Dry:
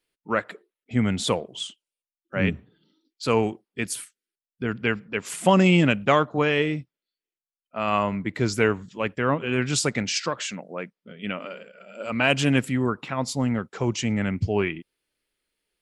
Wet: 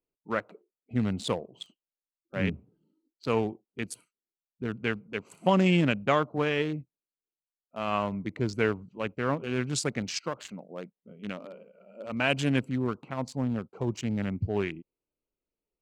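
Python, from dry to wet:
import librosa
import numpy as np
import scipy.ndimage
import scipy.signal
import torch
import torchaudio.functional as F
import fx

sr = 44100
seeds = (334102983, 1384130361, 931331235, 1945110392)

y = fx.wiener(x, sr, points=25)
y = F.gain(torch.from_numpy(y), -5.0).numpy()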